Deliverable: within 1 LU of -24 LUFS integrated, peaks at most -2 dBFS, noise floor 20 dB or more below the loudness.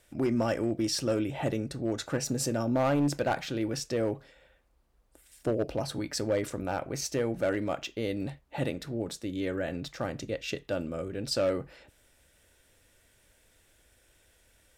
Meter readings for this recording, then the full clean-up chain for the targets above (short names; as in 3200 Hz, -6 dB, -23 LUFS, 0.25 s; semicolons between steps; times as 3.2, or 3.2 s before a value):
clipped 0.5%; flat tops at -21.0 dBFS; loudness -31.5 LUFS; peak -21.0 dBFS; loudness target -24.0 LUFS
-> clip repair -21 dBFS; gain +7.5 dB